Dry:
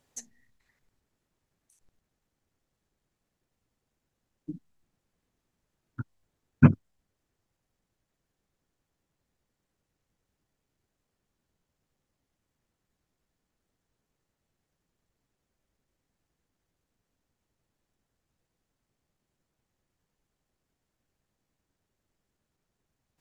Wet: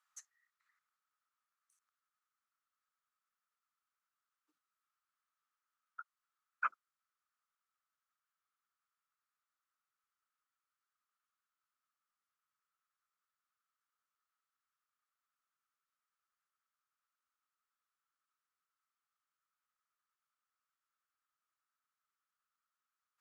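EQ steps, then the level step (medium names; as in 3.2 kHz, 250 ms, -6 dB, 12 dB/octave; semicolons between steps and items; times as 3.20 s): ladder high-pass 1.2 kHz, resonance 80%; 0.0 dB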